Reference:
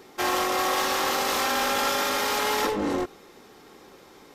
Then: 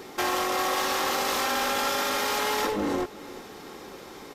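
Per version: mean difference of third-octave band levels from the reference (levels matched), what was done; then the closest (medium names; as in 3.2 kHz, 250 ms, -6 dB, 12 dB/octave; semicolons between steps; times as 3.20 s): 3.0 dB: compression 2:1, threshold -38 dBFS, peak gain reduction 9 dB; on a send: feedback delay 367 ms, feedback 38%, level -18 dB; on the sum: trim +7 dB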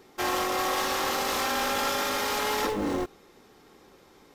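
1.5 dB: bass shelf 130 Hz +6.5 dB; in parallel at -7.5 dB: word length cut 6-bit, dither none; on the sum: trim -6 dB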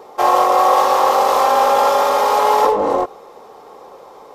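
8.5 dB: high-order bell 720 Hz +15 dB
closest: second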